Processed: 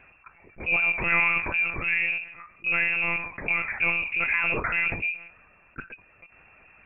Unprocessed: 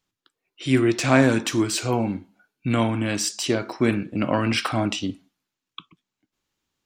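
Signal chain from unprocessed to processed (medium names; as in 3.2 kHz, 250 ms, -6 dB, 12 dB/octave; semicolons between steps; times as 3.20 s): frequency inversion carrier 2.7 kHz; monotone LPC vocoder at 8 kHz 170 Hz; level flattener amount 50%; trim -7 dB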